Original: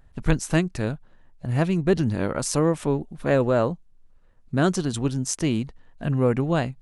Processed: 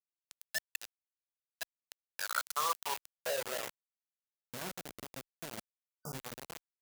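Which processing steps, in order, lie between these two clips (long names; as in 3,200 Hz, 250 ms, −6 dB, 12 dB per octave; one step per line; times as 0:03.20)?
fade-out on the ending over 0.56 s
de-essing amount 80%
gate on every frequency bin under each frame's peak −20 dB strong
single-tap delay 125 ms −19 dB
band-pass filter sweep 2,600 Hz → 240 Hz, 0:02.11–0:03.91
brickwall limiter −23 dBFS, peak gain reduction 8 dB
guitar amp tone stack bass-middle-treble 10-0-10
four-comb reverb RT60 1.3 s, combs from 26 ms, DRR 4.5 dB
reverb reduction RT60 0.52 s
centre clipping without the shift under −48 dBFS
spectral tilt +3 dB per octave
healed spectral selection 0:05.91–0:06.11, 1,500–4,700 Hz before
level +12.5 dB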